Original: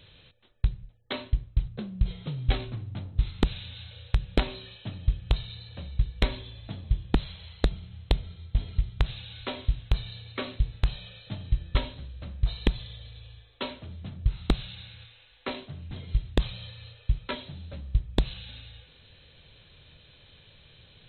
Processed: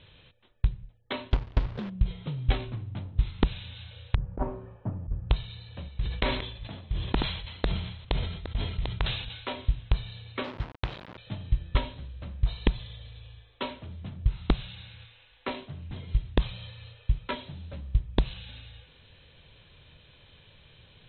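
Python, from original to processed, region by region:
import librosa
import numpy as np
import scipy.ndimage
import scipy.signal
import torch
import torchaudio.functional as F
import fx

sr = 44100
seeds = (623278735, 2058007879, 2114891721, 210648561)

y = fx.chain(x, sr, fx.transient(attack_db=-1, sustain_db=4),
    fx.quant_companded(bits=4), at=(1.31, 1.9))
y = fx.chain(y, sr, fx.lowpass(hz=1200.0, slope=24),
    fx.over_compress(threshold_db=-25.0, ratio=-0.5), at=(4.15, 5.3))
y = fx.chain(y, sr, fx.reverse_delay(ms=434, wet_db=-11.5),
    fx.low_shelf(hz=250.0, db=-7.5),
    fx.sustainer(db_per_s=61.0), at=(5.88, 9.53))
y = fx.chain(y, sr, fx.delta_hold(step_db=-36.0),
    fx.highpass(hz=240.0, slope=6),
    fx.leveller(passes=1), at=(10.44, 11.18))
y = scipy.signal.sosfilt(scipy.signal.butter(4, 3700.0, 'lowpass', fs=sr, output='sos'), y)
y = fx.peak_eq(y, sr, hz=980.0, db=4.0, octaves=0.25)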